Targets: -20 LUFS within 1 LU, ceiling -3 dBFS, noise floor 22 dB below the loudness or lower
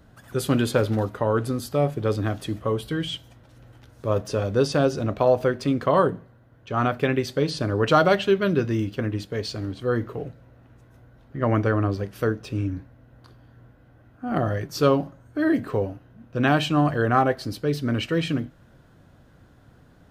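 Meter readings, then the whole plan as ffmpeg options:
loudness -24.0 LUFS; peak -6.0 dBFS; loudness target -20.0 LUFS
-> -af "volume=4dB,alimiter=limit=-3dB:level=0:latency=1"

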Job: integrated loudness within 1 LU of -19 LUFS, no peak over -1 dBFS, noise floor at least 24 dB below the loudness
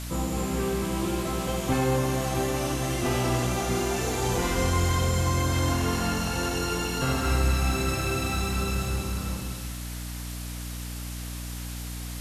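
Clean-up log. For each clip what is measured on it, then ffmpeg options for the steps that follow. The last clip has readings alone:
hum 60 Hz; harmonics up to 300 Hz; hum level -33 dBFS; noise floor -35 dBFS; noise floor target -52 dBFS; loudness -27.5 LUFS; peak -13.0 dBFS; loudness target -19.0 LUFS
-> -af "bandreject=f=60:t=h:w=6,bandreject=f=120:t=h:w=6,bandreject=f=180:t=h:w=6,bandreject=f=240:t=h:w=6,bandreject=f=300:t=h:w=6"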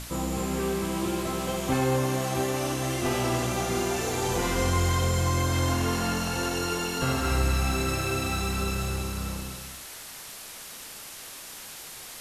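hum none; noise floor -42 dBFS; noise floor target -52 dBFS
-> -af "afftdn=nr=10:nf=-42"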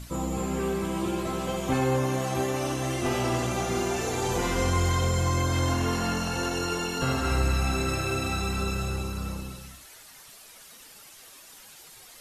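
noise floor -50 dBFS; noise floor target -52 dBFS
-> -af "afftdn=nr=6:nf=-50"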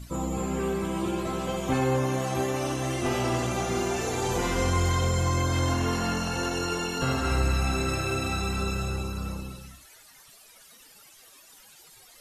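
noise floor -53 dBFS; loudness -27.5 LUFS; peak -13.0 dBFS; loudness target -19.0 LUFS
-> -af "volume=8.5dB"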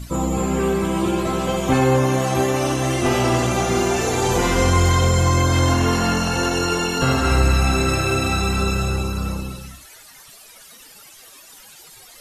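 loudness -19.0 LUFS; peak -4.5 dBFS; noise floor -45 dBFS

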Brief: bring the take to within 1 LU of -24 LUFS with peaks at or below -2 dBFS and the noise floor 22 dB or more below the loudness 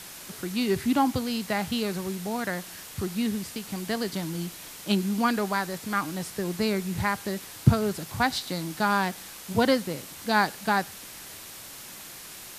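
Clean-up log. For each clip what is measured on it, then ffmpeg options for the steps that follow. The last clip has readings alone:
noise floor -43 dBFS; noise floor target -50 dBFS; loudness -28.0 LUFS; peak -4.5 dBFS; loudness target -24.0 LUFS
-> -af "afftdn=nr=7:nf=-43"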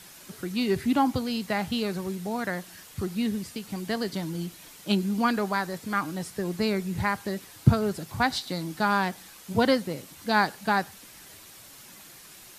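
noise floor -49 dBFS; noise floor target -50 dBFS
-> -af "afftdn=nr=6:nf=-49"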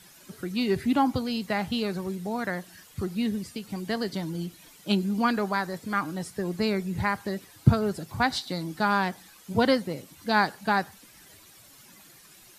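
noise floor -53 dBFS; loudness -28.0 LUFS; peak -4.5 dBFS; loudness target -24.0 LUFS
-> -af "volume=4dB,alimiter=limit=-2dB:level=0:latency=1"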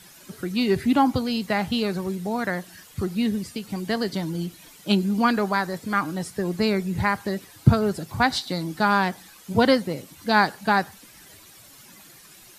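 loudness -24.0 LUFS; peak -2.0 dBFS; noise floor -49 dBFS

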